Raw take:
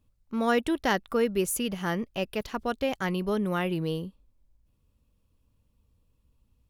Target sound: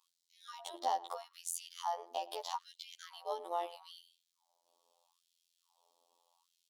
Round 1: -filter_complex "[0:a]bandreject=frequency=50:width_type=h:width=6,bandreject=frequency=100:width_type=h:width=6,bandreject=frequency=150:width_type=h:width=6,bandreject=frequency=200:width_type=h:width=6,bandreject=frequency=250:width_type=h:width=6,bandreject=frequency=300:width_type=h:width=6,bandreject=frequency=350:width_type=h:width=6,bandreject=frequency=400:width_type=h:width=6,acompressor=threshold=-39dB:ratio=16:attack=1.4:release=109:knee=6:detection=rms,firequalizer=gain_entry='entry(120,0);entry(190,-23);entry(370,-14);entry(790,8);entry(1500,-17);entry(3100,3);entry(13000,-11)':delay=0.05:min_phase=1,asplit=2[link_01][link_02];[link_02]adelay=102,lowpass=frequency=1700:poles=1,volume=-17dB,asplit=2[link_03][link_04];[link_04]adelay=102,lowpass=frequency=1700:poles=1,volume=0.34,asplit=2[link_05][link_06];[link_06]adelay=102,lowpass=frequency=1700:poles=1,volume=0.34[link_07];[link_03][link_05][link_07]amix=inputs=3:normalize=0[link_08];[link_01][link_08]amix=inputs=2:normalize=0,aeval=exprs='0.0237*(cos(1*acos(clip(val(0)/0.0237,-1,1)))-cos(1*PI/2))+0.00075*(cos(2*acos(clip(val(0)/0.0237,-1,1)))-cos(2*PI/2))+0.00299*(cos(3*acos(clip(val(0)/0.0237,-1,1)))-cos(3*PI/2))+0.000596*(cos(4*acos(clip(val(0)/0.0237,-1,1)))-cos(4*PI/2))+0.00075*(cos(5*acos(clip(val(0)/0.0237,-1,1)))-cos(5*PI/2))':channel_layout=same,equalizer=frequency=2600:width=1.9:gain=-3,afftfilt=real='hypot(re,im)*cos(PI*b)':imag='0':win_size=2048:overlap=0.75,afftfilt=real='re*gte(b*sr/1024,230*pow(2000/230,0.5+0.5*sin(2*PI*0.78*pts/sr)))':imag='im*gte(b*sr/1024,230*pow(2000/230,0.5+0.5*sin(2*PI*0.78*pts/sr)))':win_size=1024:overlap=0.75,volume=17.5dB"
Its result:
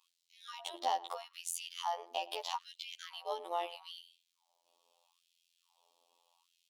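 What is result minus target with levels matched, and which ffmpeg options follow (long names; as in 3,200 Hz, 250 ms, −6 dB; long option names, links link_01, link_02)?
2,000 Hz band +5.5 dB
-filter_complex "[0:a]bandreject=frequency=50:width_type=h:width=6,bandreject=frequency=100:width_type=h:width=6,bandreject=frequency=150:width_type=h:width=6,bandreject=frequency=200:width_type=h:width=6,bandreject=frequency=250:width_type=h:width=6,bandreject=frequency=300:width_type=h:width=6,bandreject=frequency=350:width_type=h:width=6,bandreject=frequency=400:width_type=h:width=6,acompressor=threshold=-39dB:ratio=16:attack=1.4:release=109:knee=6:detection=rms,firequalizer=gain_entry='entry(120,0);entry(190,-23);entry(370,-14);entry(790,8);entry(1500,-17);entry(3100,3);entry(13000,-11)':delay=0.05:min_phase=1,asplit=2[link_01][link_02];[link_02]adelay=102,lowpass=frequency=1700:poles=1,volume=-17dB,asplit=2[link_03][link_04];[link_04]adelay=102,lowpass=frequency=1700:poles=1,volume=0.34,asplit=2[link_05][link_06];[link_06]adelay=102,lowpass=frequency=1700:poles=1,volume=0.34[link_07];[link_03][link_05][link_07]amix=inputs=3:normalize=0[link_08];[link_01][link_08]amix=inputs=2:normalize=0,aeval=exprs='0.0237*(cos(1*acos(clip(val(0)/0.0237,-1,1)))-cos(1*PI/2))+0.00075*(cos(2*acos(clip(val(0)/0.0237,-1,1)))-cos(2*PI/2))+0.00299*(cos(3*acos(clip(val(0)/0.0237,-1,1)))-cos(3*PI/2))+0.000596*(cos(4*acos(clip(val(0)/0.0237,-1,1)))-cos(4*PI/2))+0.00075*(cos(5*acos(clip(val(0)/0.0237,-1,1)))-cos(5*PI/2))':channel_layout=same,equalizer=frequency=2600:width=1.9:gain=-13,afftfilt=real='hypot(re,im)*cos(PI*b)':imag='0':win_size=2048:overlap=0.75,afftfilt=real='re*gte(b*sr/1024,230*pow(2000/230,0.5+0.5*sin(2*PI*0.78*pts/sr)))':imag='im*gte(b*sr/1024,230*pow(2000/230,0.5+0.5*sin(2*PI*0.78*pts/sr)))':win_size=1024:overlap=0.75,volume=17.5dB"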